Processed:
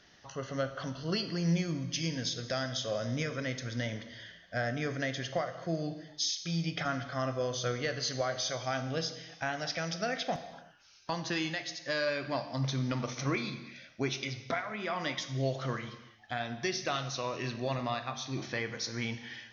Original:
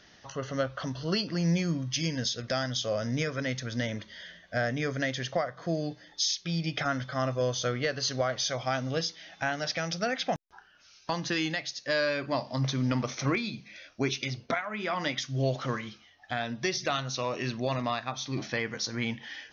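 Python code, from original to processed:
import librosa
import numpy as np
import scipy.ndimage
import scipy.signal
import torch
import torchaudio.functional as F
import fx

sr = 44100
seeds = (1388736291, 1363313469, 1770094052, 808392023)

y = fx.rev_gated(x, sr, seeds[0], gate_ms=410, shape='falling', drr_db=8.5)
y = y * librosa.db_to_amplitude(-4.0)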